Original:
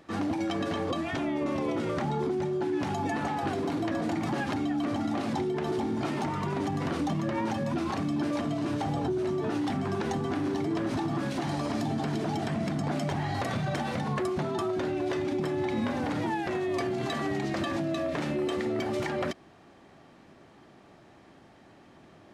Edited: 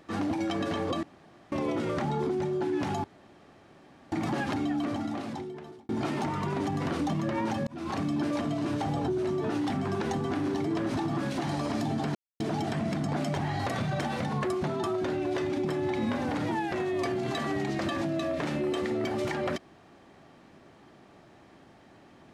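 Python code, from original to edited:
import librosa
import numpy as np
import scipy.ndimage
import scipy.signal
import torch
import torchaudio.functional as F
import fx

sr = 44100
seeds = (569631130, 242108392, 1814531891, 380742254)

y = fx.edit(x, sr, fx.room_tone_fill(start_s=1.03, length_s=0.49),
    fx.room_tone_fill(start_s=3.04, length_s=1.08),
    fx.fade_out_span(start_s=4.73, length_s=1.16),
    fx.fade_in_span(start_s=7.67, length_s=0.29),
    fx.insert_silence(at_s=12.15, length_s=0.25), tone=tone)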